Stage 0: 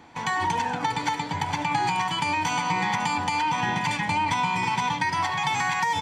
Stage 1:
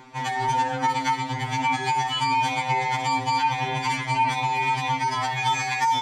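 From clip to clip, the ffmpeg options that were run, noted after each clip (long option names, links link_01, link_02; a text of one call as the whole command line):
ffmpeg -i in.wav -af "aeval=exprs='val(0)*sin(2*PI*25*n/s)':channel_layout=same,acompressor=mode=upward:threshold=-46dB:ratio=2.5,afftfilt=real='re*2.45*eq(mod(b,6),0)':imag='im*2.45*eq(mod(b,6),0)':win_size=2048:overlap=0.75,volume=6dB" out.wav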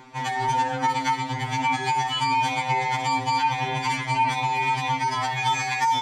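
ffmpeg -i in.wav -af anull out.wav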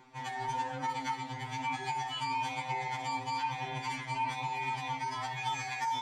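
ffmpeg -i in.wav -af "flanger=delay=5.1:depth=8.7:regen=77:speed=1.1:shape=triangular,volume=-7dB" out.wav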